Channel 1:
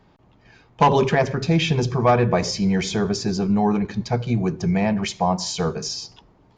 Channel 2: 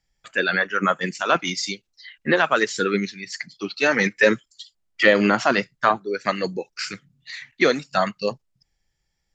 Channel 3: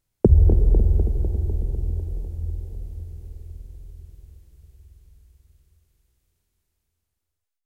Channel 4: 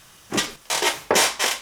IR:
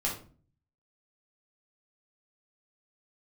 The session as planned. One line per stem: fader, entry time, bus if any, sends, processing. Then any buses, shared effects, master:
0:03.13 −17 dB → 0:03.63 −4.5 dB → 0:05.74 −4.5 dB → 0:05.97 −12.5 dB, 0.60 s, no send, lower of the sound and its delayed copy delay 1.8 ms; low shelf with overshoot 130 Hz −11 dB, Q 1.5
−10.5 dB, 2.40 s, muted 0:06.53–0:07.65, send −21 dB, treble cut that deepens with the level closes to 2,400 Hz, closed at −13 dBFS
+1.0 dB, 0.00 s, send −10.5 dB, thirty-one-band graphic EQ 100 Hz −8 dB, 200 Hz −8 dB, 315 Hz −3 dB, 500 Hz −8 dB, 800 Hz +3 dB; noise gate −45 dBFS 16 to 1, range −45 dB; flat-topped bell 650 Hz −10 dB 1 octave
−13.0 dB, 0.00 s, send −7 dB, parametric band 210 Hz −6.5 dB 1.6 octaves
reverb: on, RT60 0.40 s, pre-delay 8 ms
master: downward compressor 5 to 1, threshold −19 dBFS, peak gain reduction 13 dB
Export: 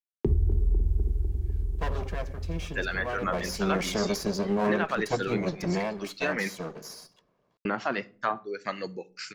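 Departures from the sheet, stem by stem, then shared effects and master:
stem 1: entry 0.60 s → 1.00 s
stem 3 +1.0 dB → −9.0 dB
stem 4: muted

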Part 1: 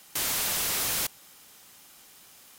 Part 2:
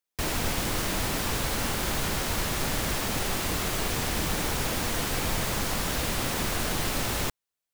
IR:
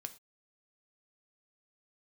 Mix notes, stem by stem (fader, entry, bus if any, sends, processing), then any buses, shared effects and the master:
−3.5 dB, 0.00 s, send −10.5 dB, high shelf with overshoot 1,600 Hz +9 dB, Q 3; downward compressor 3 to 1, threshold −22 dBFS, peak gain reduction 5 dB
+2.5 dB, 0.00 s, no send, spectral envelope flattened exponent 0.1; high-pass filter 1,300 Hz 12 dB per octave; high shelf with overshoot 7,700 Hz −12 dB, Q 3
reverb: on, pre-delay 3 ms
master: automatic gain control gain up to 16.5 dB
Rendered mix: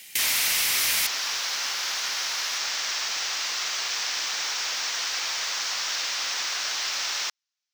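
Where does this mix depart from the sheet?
stem 2: missing spectral envelope flattened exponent 0.1
master: missing automatic gain control gain up to 16.5 dB

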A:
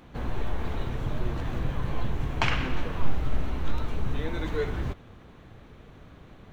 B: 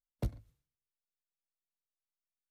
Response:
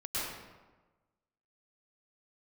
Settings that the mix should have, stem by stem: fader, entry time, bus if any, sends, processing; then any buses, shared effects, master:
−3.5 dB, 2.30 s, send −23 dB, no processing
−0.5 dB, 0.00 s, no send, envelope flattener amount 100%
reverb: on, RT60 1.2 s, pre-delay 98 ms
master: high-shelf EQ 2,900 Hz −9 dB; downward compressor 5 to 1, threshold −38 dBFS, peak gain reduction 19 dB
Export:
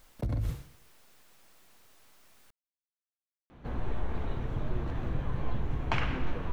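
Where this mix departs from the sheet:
stem A: entry 2.30 s → 3.50 s
master: missing downward compressor 5 to 1, threshold −38 dBFS, peak gain reduction 19 dB

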